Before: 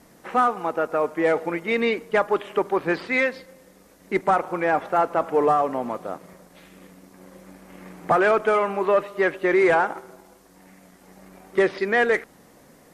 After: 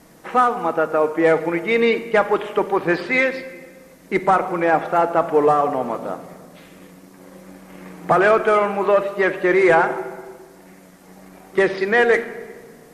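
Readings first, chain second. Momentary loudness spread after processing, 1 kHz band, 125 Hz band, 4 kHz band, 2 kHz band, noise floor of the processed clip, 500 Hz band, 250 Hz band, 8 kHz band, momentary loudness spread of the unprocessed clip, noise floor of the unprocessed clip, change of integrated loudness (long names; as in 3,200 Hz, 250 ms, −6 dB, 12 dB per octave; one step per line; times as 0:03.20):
13 LU, +3.5 dB, +5.5 dB, +4.0 dB, +4.0 dB, −47 dBFS, +4.0 dB, +4.0 dB, can't be measured, 8 LU, −53 dBFS, +4.0 dB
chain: rectangular room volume 1,900 cubic metres, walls mixed, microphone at 0.6 metres
level +3.5 dB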